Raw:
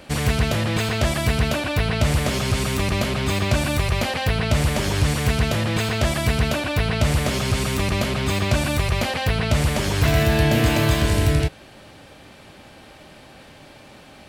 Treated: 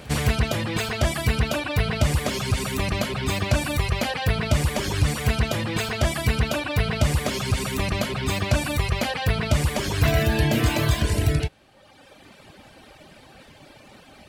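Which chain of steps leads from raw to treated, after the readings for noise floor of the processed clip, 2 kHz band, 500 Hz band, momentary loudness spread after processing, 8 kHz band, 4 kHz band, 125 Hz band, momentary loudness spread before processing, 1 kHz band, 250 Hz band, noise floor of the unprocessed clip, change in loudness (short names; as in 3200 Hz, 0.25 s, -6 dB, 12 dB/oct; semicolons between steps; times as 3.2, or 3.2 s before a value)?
-51 dBFS, -2.5 dB, -3.0 dB, 4 LU, -2.5 dB, -2.5 dB, -2.5 dB, 4 LU, -2.5 dB, -3.5 dB, -46 dBFS, -2.5 dB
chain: reverb removal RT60 1.3 s; pre-echo 0.21 s -23 dB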